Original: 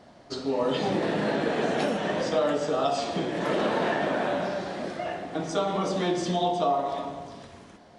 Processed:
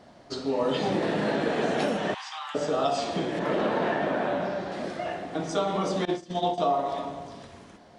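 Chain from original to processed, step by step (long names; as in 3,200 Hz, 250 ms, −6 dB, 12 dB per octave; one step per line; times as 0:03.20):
0:02.14–0:02.55: Chebyshev high-pass with heavy ripple 770 Hz, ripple 6 dB
0:03.39–0:04.72: high-shelf EQ 4,400 Hz −10.5 dB
0:06.05–0:06.58: noise gate −25 dBFS, range −21 dB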